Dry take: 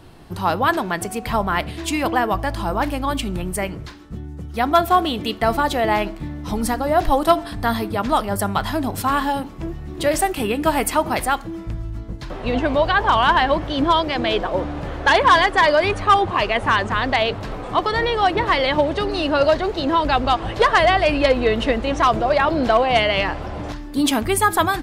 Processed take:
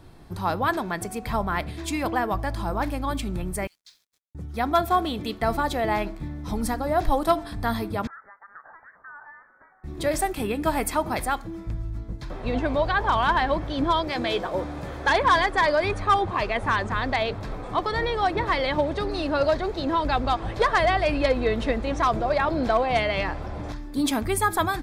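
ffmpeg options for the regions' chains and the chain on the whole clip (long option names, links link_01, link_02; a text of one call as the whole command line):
ffmpeg -i in.wav -filter_complex "[0:a]asettb=1/sr,asplit=3[link_01][link_02][link_03];[link_01]atrim=end=3.674[link_04];[link_02]atrim=start=3.67:end=4.35,asetpts=PTS-STARTPTS,afade=type=in:duration=0.004:curve=qsin,afade=type=out:start_time=0.676:duration=0.004:curve=qsin,asuperpass=centerf=5900:order=4:qfactor=1,acrusher=bits=8:mix=0:aa=0.5[link_05];[link_03]atrim=start=4.346[link_06];[link_04][link_05]acrossfade=duration=0.004:curve1=hsin:curve2=qsin[link_07];[link_07][link_06]acrossfade=duration=0.004:curve1=qsin:curve2=hsin,asettb=1/sr,asplit=3[link_08][link_09][link_10];[link_08]atrim=end=8.074[link_11];[link_09]atrim=start=8.07:end=9.84,asetpts=PTS-STARTPTS,afade=type=in:duration=0.004:curve=qsin,afade=type=out:start_time=1.766:duration=0.004:curve=qsin,highpass=frequency=1100:width=0.5412,highpass=frequency=1100:width=1.3066,acompressor=threshold=-38dB:ratio=3:attack=3.2:release=140:knee=1:detection=peak,lowpass=frequency=2200:width_type=q:width=0.5098,lowpass=frequency=2200:width_type=q:width=0.6013,lowpass=frequency=2200:width_type=q:width=0.9,lowpass=frequency=2200:width_type=q:width=2.563,afreqshift=-2600[link_12];[link_10]atrim=start=9.836[link_13];[link_11][link_12]acrossfade=duration=0.004:curve1=hsin:curve2=qsin[link_14];[link_14][link_13]acrossfade=duration=0.004:curve1=qsin:curve2=hsin,asettb=1/sr,asplit=3[link_15][link_16][link_17];[link_15]atrim=end=14.074[link_18];[link_16]atrim=start=14.07:end=15.07,asetpts=PTS-STARTPTS,afade=type=in:duration=0.004:curve=qsin,afade=type=out:start_time=0.996:duration=0.004:curve=qsin,highpass=frequency=100:poles=1,highshelf=frequency=6600:gain=10,asplit=2[link_19][link_20];[link_20]adelay=16,volume=-11dB[link_21];[link_19][link_21]amix=inputs=2:normalize=0,atrim=end_sample=44100[link_22];[link_17]atrim=start=15.066[link_23];[link_18][link_22]acrossfade=duration=0.004:curve1=hsin:curve2=qsin[link_24];[link_24][link_23]acrossfade=duration=0.004:curve1=qsin:curve2=hsin,lowshelf=frequency=130:gain=4.5,bandreject=frequency=2900:width=7.7,volume=-6dB" out.wav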